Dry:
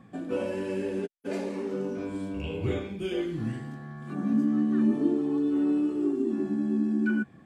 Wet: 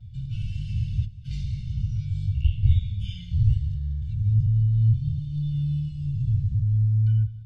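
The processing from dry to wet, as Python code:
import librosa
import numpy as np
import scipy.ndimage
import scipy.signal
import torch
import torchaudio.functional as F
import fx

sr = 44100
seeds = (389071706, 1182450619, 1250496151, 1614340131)

y = fx.octave_divider(x, sr, octaves=1, level_db=-3.0)
y = scipy.signal.sosfilt(scipy.signal.ellip(3, 1.0, 70, [110.0, 3300.0], 'bandstop', fs=sr, output='sos'), y)
y = y + 10.0 ** (-17.0 / 20.0) * np.pad(y, (int(193 * sr / 1000.0), 0))[:len(y)]
y = fx.vibrato(y, sr, rate_hz=0.43, depth_cents=24.0)
y = fx.air_absorb(y, sr, metres=240.0)
y = fx.rider(y, sr, range_db=3, speed_s=0.5)
y = fx.bass_treble(y, sr, bass_db=8, treble_db=10)
y = y + 0.92 * np.pad(y, (int(1.4 * sr / 1000.0), 0))[:len(y)]
y = y * librosa.db_to_amplitude(1.0)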